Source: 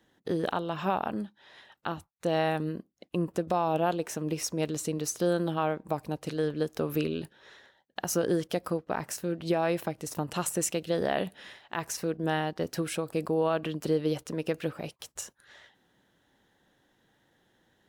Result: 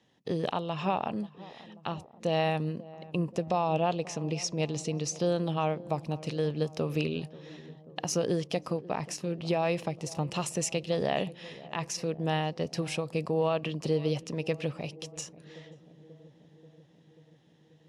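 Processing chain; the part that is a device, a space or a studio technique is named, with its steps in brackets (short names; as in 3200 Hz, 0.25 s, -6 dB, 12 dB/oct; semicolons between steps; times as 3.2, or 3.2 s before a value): car door speaker (speaker cabinet 80–9200 Hz, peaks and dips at 140 Hz +6 dB, 330 Hz -5 dB, 1500 Hz -10 dB, 2600 Hz +5 dB, 5200 Hz +4 dB, 8200 Hz -5 dB); 3.47–5.43 LPF 8200 Hz 12 dB/oct; darkening echo 0.536 s, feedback 75%, low-pass 840 Hz, level -17.5 dB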